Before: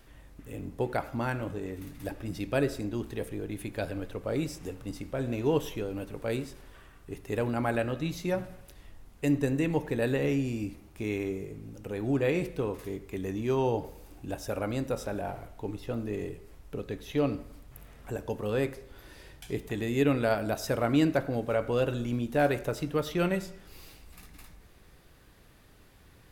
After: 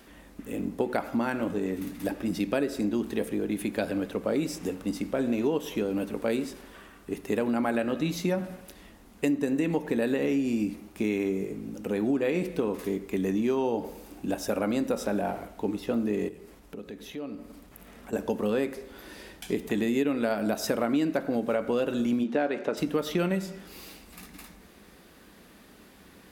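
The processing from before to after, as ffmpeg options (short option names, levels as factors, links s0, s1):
-filter_complex "[0:a]asettb=1/sr,asplit=3[s0][s1][s2];[s0]atrim=end=16.284[s3];[s1]atrim=start=16.28:end=18.13,asetpts=PTS-STARTPTS,afade=t=in:d=0.004:c=qsin,afade=t=out:st=1.846:d=0.004:c=qsin,acompressor=threshold=0.00447:ratio=3:attack=3.2:release=140:knee=1:detection=peak[s4];[s2]atrim=start=18.126[s5];[s3][s4]acrossfade=d=0.004:c1=hsin:c2=qsin[s6];[s6][s5]acrossfade=d=0.004:c1=qsin:c2=hsin,asplit=3[s7][s8][s9];[s7]afade=t=out:st=22.23:d=0.02[s10];[s8]highpass=190,lowpass=4100,afade=t=in:st=22.23:d=0.02,afade=t=out:st=22.76:d=0.02[s11];[s9]afade=t=in:st=22.76:d=0.02[s12];[s10][s11][s12]amix=inputs=3:normalize=0,highpass=40,lowshelf=f=160:t=q:w=3:g=-7,acompressor=threshold=0.0355:ratio=6,volume=2"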